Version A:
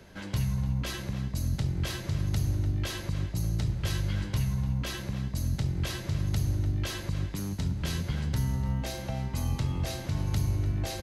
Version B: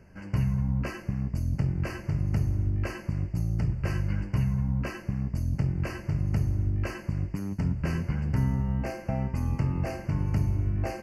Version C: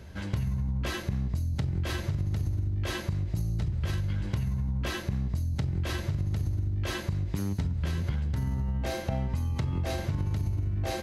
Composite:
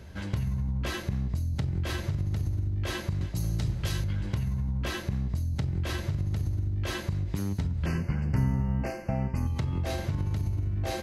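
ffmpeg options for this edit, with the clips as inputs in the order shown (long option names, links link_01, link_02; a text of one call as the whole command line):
ffmpeg -i take0.wav -i take1.wav -i take2.wav -filter_complex "[2:a]asplit=3[link_01][link_02][link_03];[link_01]atrim=end=3.212[link_04];[0:a]atrim=start=3.208:end=4.042[link_05];[link_02]atrim=start=4.038:end=7.862[link_06];[1:a]atrim=start=7.858:end=9.472[link_07];[link_03]atrim=start=9.468[link_08];[link_04][link_05]acrossfade=duration=0.004:curve1=hsin:curve2=hsin[link_09];[link_09][link_06]acrossfade=duration=0.004:curve1=hsin:curve2=hsin[link_10];[link_10][link_07]acrossfade=duration=0.004:curve1=hsin:curve2=hsin[link_11];[link_11][link_08]acrossfade=duration=0.004:curve1=hsin:curve2=hsin" out.wav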